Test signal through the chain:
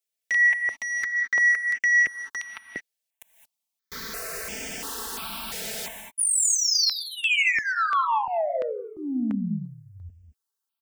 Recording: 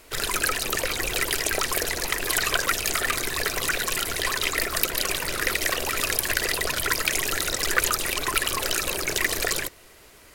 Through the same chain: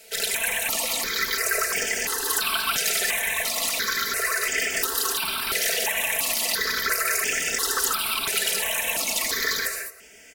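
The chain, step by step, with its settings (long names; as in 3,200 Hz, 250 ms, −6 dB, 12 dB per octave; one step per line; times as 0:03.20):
high-pass filter 150 Hz 6 dB per octave
low-shelf EQ 460 Hz −7.5 dB
comb filter 4.5 ms, depth 82%
soft clipping −18.5 dBFS
reverb whose tail is shaped and stops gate 240 ms rising, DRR 3.5 dB
step-sequenced phaser 2.9 Hz 290–4,000 Hz
level +3 dB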